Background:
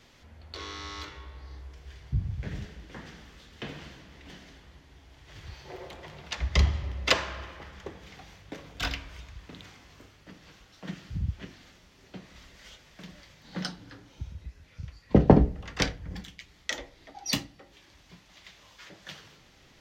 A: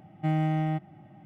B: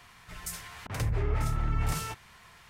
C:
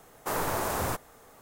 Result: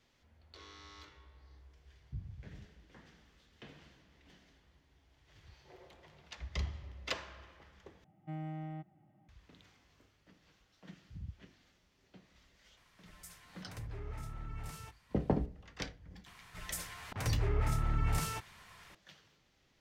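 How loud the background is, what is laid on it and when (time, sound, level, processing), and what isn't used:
background -14.5 dB
8.04 replace with A -15.5 dB + high shelf 2800 Hz -5.5 dB
12.77 add B -15 dB
16.26 add B -3 dB
not used: C

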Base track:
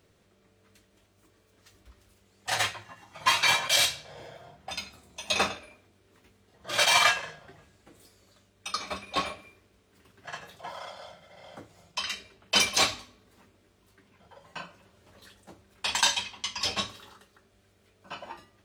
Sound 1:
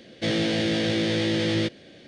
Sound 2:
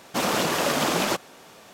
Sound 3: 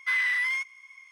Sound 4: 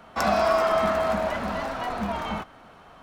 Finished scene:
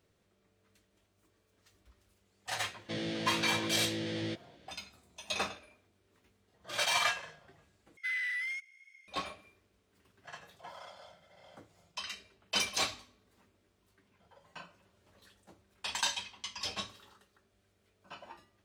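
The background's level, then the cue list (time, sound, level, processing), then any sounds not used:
base track -8.5 dB
2.67 add 1 -12.5 dB
7.97 replace with 3 -9 dB + brick-wall FIR high-pass 1300 Hz
not used: 2, 4

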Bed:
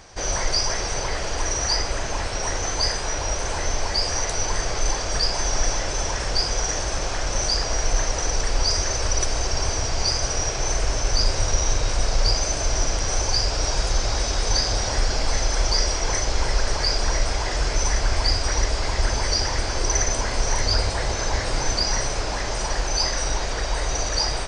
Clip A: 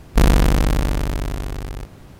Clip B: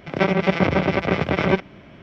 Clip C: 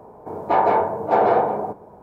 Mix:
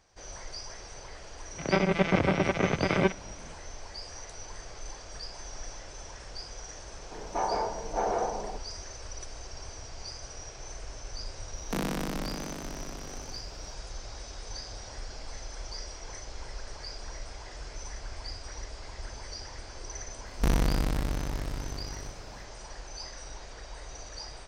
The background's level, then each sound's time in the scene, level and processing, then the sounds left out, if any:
bed -19 dB
1.52 add B -6 dB
6.85 add C -12.5 dB
11.55 add A -12.5 dB + steep high-pass 150 Hz 96 dB/oct
20.26 add A -11.5 dB

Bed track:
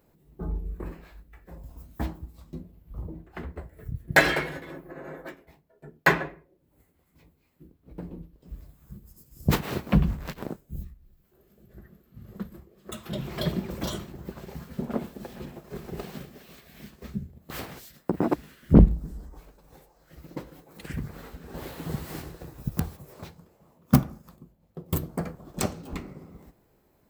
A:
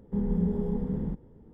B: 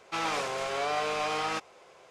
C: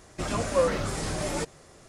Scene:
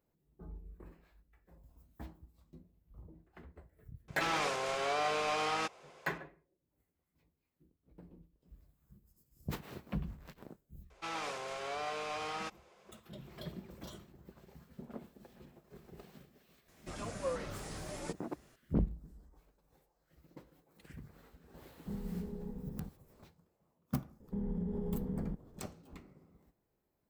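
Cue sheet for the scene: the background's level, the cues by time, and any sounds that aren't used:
bed track -17 dB
4.08 add B -3 dB
10.9 add B -9 dB
16.68 add C -13.5 dB
21.74 add A -14 dB
24.2 add A -5.5 dB + compressor, threshold -27 dBFS

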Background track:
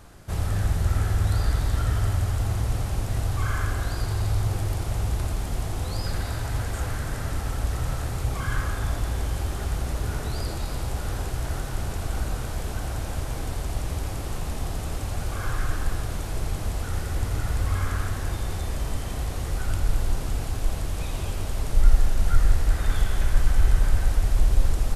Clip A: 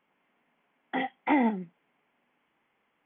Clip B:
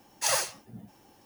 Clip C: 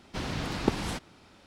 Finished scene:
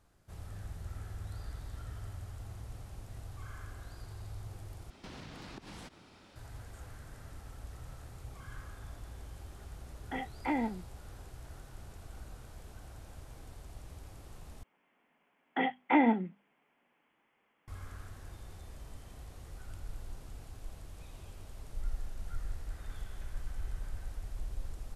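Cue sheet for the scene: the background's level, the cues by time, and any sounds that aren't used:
background track -20 dB
4.9 replace with C -2 dB + compressor 16:1, threshold -41 dBFS
9.18 add A -8 dB
14.63 replace with A -0.5 dB + notches 50/100/150/200/250 Hz
not used: B

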